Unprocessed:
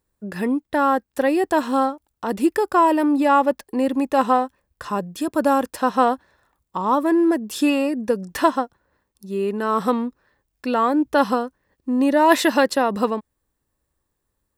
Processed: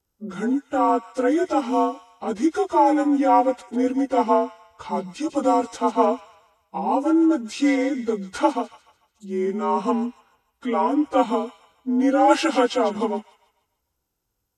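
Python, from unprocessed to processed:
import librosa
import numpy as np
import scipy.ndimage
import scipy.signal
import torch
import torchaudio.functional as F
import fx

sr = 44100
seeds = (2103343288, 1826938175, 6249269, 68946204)

y = fx.partial_stretch(x, sr, pct=89)
y = fx.echo_wet_highpass(y, sr, ms=147, feedback_pct=39, hz=2000.0, wet_db=-9.5)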